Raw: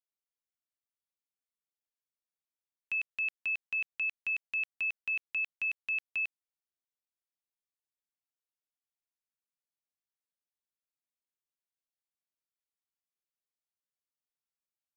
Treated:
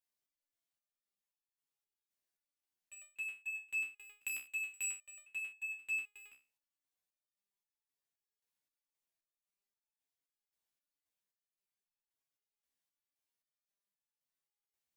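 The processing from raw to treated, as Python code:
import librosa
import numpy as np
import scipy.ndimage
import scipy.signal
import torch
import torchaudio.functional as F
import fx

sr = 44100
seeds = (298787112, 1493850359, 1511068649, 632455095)

y = fx.notch(x, sr, hz=1300.0, q=7.7)
y = np.clip(y, -10.0 ** (-38.0 / 20.0), 10.0 ** (-38.0 / 20.0))
y = fx.high_shelf(y, sr, hz=4000.0, db=8.0, at=(4.16, 4.85))
y = fx.resonator_held(y, sr, hz=3.8, low_hz=66.0, high_hz=870.0)
y = y * 10.0 ** (11.0 / 20.0)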